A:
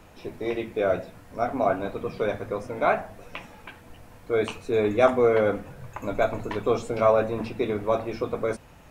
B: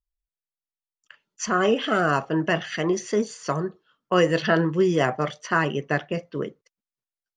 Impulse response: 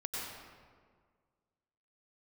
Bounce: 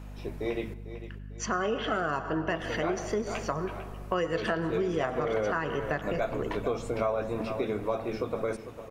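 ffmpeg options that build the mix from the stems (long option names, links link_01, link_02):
-filter_complex "[0:a]volume=-2.5dB,asplit=3[link_01][link_02][link_03];[link_01]atrim=end=0.74,asetpts=PTS-STARTPTS,afade=type=out:start_time=0.736:duration=0.004:curve=hsin[link_04];[link_02]atrim=start=0.74:end=2.48,asetpts=PTS-STARTPTS,volume=0[link_05];[link_03]atrim=start=2.48,asetpts=PTS-STARTPTS,afade=type=in:duration=0.004:curve=hsin[link_06];[link_04][link_05][link_06]concat=n=3:v=0:a=1,asplit=3[link_07][link_08][link_09];[link_08]volume=-21.5dB[link_10];[link_09]volume=-13.5dB[link_11];[1:a]equalizer=frequency=880:width=0.49:gain=5,aeval=exprs='val(0)+0.0178*(sin(2*PI*50*n/s)+sin(2*PI*2*50*n/s)/2+sin(2*PI*3*50*n/s)/3+sin(2*PI*4*50*n/s)/4+sin(2*PI*5*50*n/s)/5)':channel_layout=same,volume=-8dB,asplit=3[link_12][link_13][link_14];[link_13]volume=-11dB[link_15];[link_14]apad=whole_len=392728[link_16];[link_07][link_16]sidechaincompress=threshold=-34dB:ratio=8:attack=28:release=117[link_17];[2:a]atrim=start_sample=2205[link_18];[link_10][link_15]amix=inputs=2:normalize=0[link_19];[link_19][link_18]afir=irnorm=-1:irlink=0[link_20];[link_11]aecho=0:1:449|898|1347|1796|2245|2694:1|0.41|0.168|0.0689|0.0283|0.0116[link_21];[link_17][link_12][link_20][link_21]amix=inputs=4:normalize=0,acompressor=threshold=-26dB:ratio=4"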